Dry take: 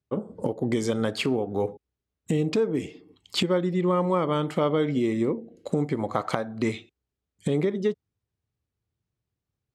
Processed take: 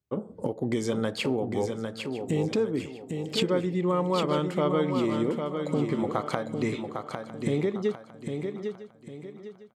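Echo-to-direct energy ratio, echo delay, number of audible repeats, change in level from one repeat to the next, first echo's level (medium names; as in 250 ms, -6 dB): -5.0 dB, 803 ms, 7, no regular repeats, -6.0 dB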